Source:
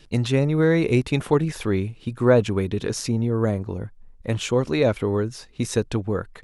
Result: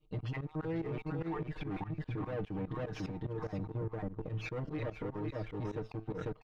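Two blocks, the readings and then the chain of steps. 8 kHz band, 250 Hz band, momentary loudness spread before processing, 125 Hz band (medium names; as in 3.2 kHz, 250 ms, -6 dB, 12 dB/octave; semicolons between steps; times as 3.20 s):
under -30 dB, -16.0 dB, 12 LU, -14.5 dB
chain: random holes in the spectrogram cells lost 25%; valve stage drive 24 dB, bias 0.5; delay 498 ms -4 dB; compression 5:1, threshold -33 dBFS, peak gain reduction 10 dB; feedback comb 110 Hz, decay 0.33 s, harmonics all, mix 40%; gate -42 dBFS, range -6 dB; distance through air 240 m; comb 6.5 ms, depth 91%; tremolo saw up 4.9 Hz, depth 90%; waveshaping leveller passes 1; treble shelf 3.3 kHz -10.5 dB; peak limiter -36 dBFS, peak gain reduction 12 dB; trim +5.5 dB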